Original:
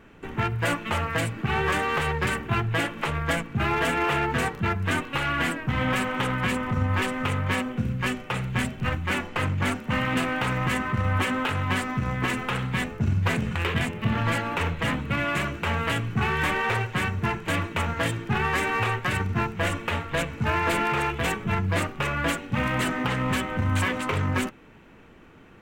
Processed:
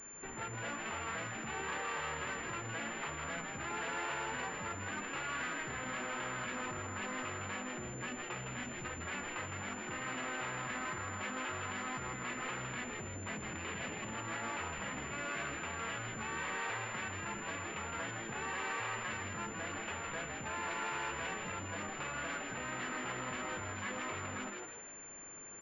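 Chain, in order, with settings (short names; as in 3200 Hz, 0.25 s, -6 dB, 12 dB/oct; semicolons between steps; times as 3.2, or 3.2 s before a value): limiter -22.5 dBFS, peak gain reduction 10.5 dB; soft clip -31.5 dBFS, distortion -11 dB; low shelf 380 Hz -10.5 dB; on a send: frequency-shifting echo 0.16 s, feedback 43%, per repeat +110 Hz, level -4 dB; on the sum: pulse-width modulation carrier 7200 Hz; gain -3 dB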